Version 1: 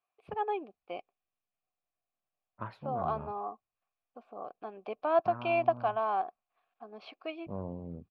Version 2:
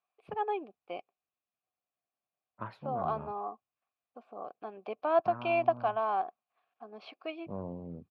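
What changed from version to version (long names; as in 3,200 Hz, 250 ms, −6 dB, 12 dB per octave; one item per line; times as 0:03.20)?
master: add high-pass filter 99 Hz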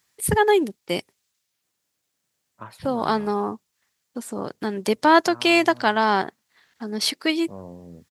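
first voice: remove formant filter a
master: remove high-frequency loss of the air 320 metres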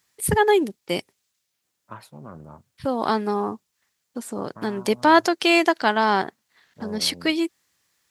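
second voice: entry −0.70 s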